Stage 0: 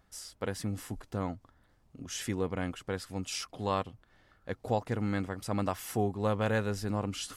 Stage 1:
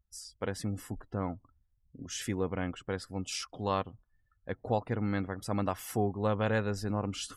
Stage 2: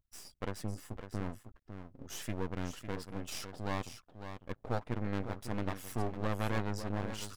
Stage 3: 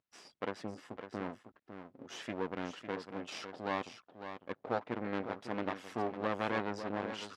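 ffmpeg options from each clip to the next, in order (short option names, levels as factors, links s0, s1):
-af "afftdn=nr=30:nf=-52"
-af "aecho=1:1:553:0.335,aeval=exprs='max(val(0),0)':c=same,volume=0.891"
-af "highpass=260,lowpass=3700,volume=1.41"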